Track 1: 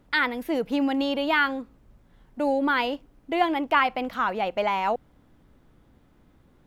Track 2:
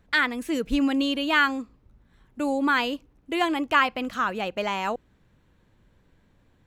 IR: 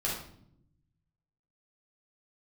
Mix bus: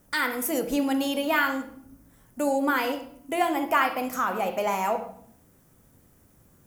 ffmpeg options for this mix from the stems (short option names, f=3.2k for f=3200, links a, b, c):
-filter_complex "[0:a]highpass=73,equalizer=f=7.4k:w=4.3:g=-5.5,volume=-6dB,asplit=2[a][b];[b]volume=-6.5dB[c];[1:a]acompressor=threshold=-36dB:ratio=2.5,volume=-5dB[d];[2:a]atrim=start_sample=2205[e];[c][e]afir=irnorm=-1:irlink=0[f];[a][d][f]amix=inputs=3:normalize=0,aexciter=amount=4.4:drive=9.1:freq=5.6k"